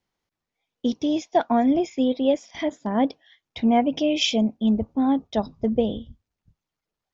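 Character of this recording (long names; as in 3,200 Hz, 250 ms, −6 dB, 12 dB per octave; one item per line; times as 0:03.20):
background noise floor −86 dBFS
spectral slope −4.0 dB per octave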